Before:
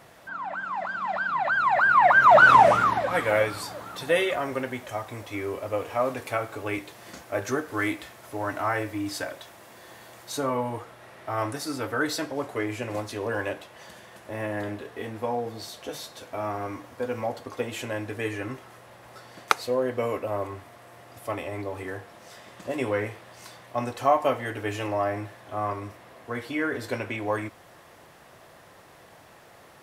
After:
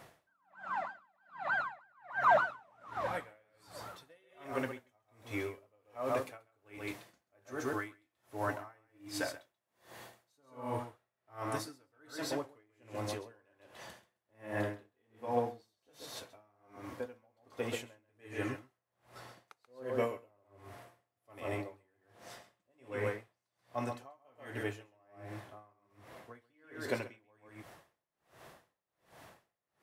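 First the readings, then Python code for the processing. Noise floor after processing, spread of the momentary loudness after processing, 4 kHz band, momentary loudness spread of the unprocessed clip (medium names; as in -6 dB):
under -85 dBFS, 21 LU, -12.5 dB, 15 LU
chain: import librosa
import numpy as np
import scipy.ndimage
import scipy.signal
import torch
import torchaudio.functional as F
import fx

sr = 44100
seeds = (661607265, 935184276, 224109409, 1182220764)

y = fx.rider(x, sr, range_db=4, speed_s=2.0)
y = y + 10.0 ** (-5.5 / 20.0) * np.pad(y, (int(134 * sr / 1000.0), 0))[:len(y)]
y = y * 10.0 ** (-39 * (0.5 - 0.5 * np.cos(2.0 * np.pi * 1.3 * np.arange(len(y)) / sr)) / 20.0)
y = y * librosa.db_to_amplitude(-7.5)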